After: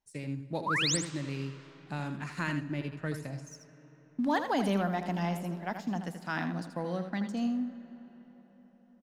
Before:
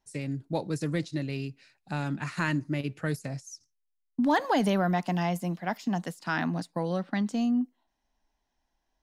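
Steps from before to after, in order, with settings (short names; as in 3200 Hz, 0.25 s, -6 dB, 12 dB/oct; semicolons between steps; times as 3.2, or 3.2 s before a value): 0.66–0.97 painted sound rise 870–9100 Hz -25 dBFS; 2.63–3.14 high shelf 8300 Hz -9.5 dB; in parallel at -5 dB: crossover distortion -46 dBFS; on the sum: echo 81 ms -8.5 dB; digital reverb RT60 4.9 s, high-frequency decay 0.6×, pre-delay 35 ms, DRR 15.5 dB; gain -8.5 dB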